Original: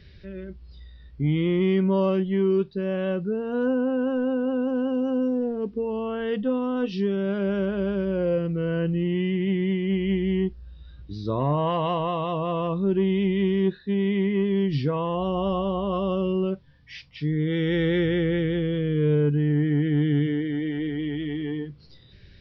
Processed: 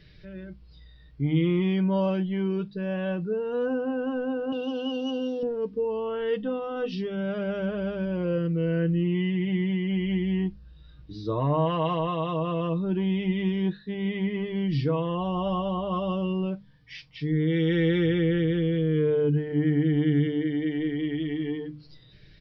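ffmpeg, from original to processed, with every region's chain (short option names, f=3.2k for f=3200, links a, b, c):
-filter_complex "[0:a]asettb=1/sr,asplit=3[a][b][c];[a]atrim=end=4.524[d];[b]atrim=start=4.52:end=5.43,asetpts=PTS-STARTPTS,afade=t=in:d=0.004:c=qsin,afade=t=out:st=0.906:d=0.004:c=qsin,highpass=160,highshelf=f=2.4k:t=q:w=3:g=11.5[e];[c]atrim=start=5.426[f];[d][e]acrossfade=d=0.004:c1=hsin:c2=qsin[g];[g][f]acrossfade=d=0.004:c1=qsin:c2=hsin,bandreject=f=50:t=h:w=6,bandreject=f=100:t=h:w=6,bandreject=f=150:t=h:w=6,bandreject=f=200:t=h:w=6,bandreject=f=250:t=h:w=6,bandreject=f=300:t=h:w=6,aecho=1:1:6.5:0.56,volume=-2.5dB"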